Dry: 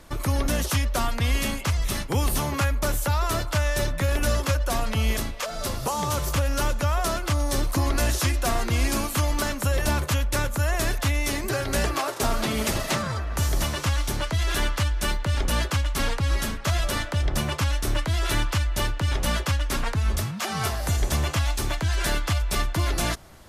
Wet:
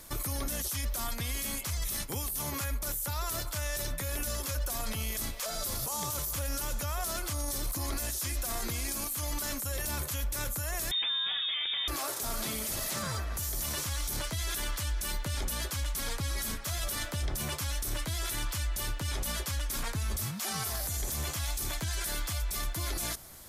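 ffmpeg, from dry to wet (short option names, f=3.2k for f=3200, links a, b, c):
-filter_complex "[0:a]asettb=1/sr,asplit=3[a][b][c];[a]atrim=end=1.024[d];[b]atrim=start=1.02:end=4.46,asetpts=PTS-STARTPTS,afade=t=in:d=0.004:c=qsin,afade=t=out:st=3.436:d=0.004:c=qsin,tremolo=f=11:d=0.37[e];[c]atrim=start=4.456[f];[d][e]acrossfade=d=0.004:c1=hsin:c2=qsin[g];[g][f]acrossfade=d=0.004:c1=qsin:c2=hsin,asettb=1/sr,asplit=3[h][i][j];[h]atrim=end=10.914[k];[i]atrim=start=10.91:end=11.88,asetpts=PTS-STARTPTS,afade=t=in:d=0.004:c=qsin,afade=t=out:st=0.966:d=0.004:c=qsin,lowpass=f=3.1k:t=q:w=0.5098,lowpass=f=3.1k:t=q:w=0.6013,lowpass=f=3.1k:t=q:w=0.9,lowpass=f=3.1k:t=q:w=2.563,afreqshift=-3700[l];[j]atrim=start=11.876[m];[k][l]acrossfade=d=0.004:c1=hsin:c2=qsin[n];[n][m]acrossfade=d=0.004:c1=qsin:c2=hsin,aemphasis=mode=production:type=75fm,alimiter=limit=-20dB:level=0:latency=1:release=11,bandreject=f=2.8k:w=18,volume=-5dB"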